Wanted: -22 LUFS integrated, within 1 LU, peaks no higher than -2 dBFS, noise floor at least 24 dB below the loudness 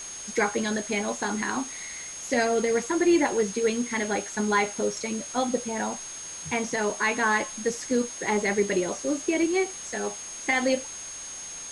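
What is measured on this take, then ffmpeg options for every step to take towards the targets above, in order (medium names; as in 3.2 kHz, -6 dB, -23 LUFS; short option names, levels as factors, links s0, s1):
steady tone 6.5 kHz; tone level -37 dBFS; noise floor -39 dBFS; noise floor target -51 dBFS; loudness -27.0 LUFS; peak level -12.0 dBFS; loudness target -22.0 LUFS
-> -af "bandreject=f=6500:w=30"
-af "afftdn=nr=12:nf=-39"
-af "volume=1.78"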